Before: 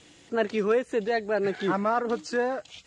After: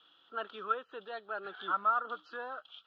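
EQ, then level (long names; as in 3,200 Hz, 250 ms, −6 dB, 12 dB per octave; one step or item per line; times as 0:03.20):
pair of resonant band-passes 2,100 Hz, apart 1.3 octaves
high-frequency loss of the air 320 metres
+5.5 dB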